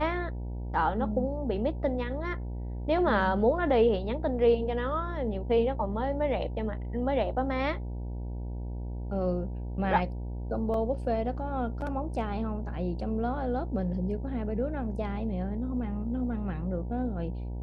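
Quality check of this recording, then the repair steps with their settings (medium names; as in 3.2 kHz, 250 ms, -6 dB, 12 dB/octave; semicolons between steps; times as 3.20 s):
buzz 60 Hz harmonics 16 -35 dBFS
10.74 s: dropout 2.3 ms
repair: de-hum 60 Hz, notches 16; interpolate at 10.74 s, 2.3 ms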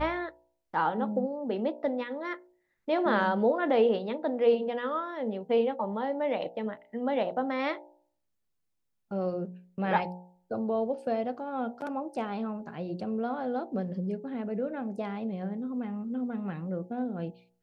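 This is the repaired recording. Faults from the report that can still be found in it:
nothing left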